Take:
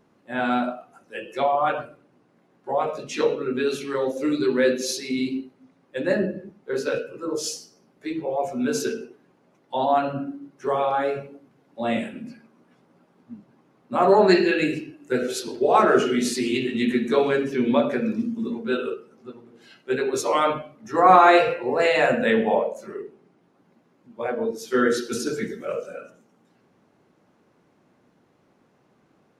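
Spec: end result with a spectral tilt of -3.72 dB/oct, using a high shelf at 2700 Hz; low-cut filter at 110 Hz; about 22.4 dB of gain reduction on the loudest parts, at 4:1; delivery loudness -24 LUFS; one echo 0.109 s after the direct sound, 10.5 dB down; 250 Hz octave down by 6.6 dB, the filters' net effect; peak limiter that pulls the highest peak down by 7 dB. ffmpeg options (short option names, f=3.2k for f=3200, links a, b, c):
-af "highpass=110,equalizer=f=250:t=o:g=-8.5,highshelf=f=2.7k:g=-3.5,acompressor=threshold=-39dB:ratio=4,alimiter=level_in=7.5dB:limit=-24dB:level=0:latency=1,volume=-7.5dB,aecho=1:1:109:0.299,volume=18dB"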